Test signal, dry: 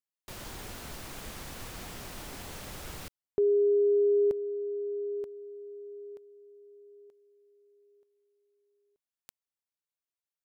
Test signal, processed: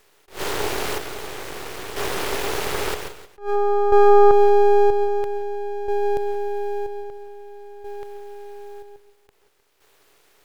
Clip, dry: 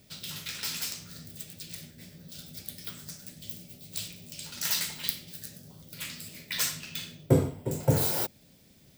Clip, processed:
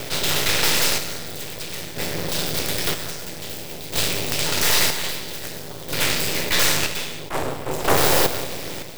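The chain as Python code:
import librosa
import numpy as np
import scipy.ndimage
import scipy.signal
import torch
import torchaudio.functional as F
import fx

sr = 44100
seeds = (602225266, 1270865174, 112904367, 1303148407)

p1 = fx.bin_compress(x, sr, power=0.6)
p2 = fx.fold_sine(p1, sr, drive_db=18, ceiling_db=-3.0)
p3 = fx.bass_treble(p2, sr, bass_db=-11, treble_db=-7)
p4 = fx.chopper(p3, sr, hz=0.51, depth_pct=60, duty_pct=50)
p5 = scipy.signal.sosfilt(scipy.signal.butter(2, 52.0, 'highpass', fs=sr, output='sos'), p4)
p6 = fx.rev_gated(p5, sr, seeds[0], gate_ms=200, shape='rising', drr_db=10.5)
p7 = np.maximum(p6, 0.0)
p8 = fx.peak_eq(p7, sr, hz=220.0, db=-6.0, octaves=0.49)
p9 = p8 + fx.echo_feedback(p8, sr, ms=309, feedback_pct=17, wet_db=-21.5, dry=0)
p10 = fx.attack_slew(p9, sr, db_per_s=210.0)
y = F.gain(torch.from_numpy(p10), -1.5).numpy()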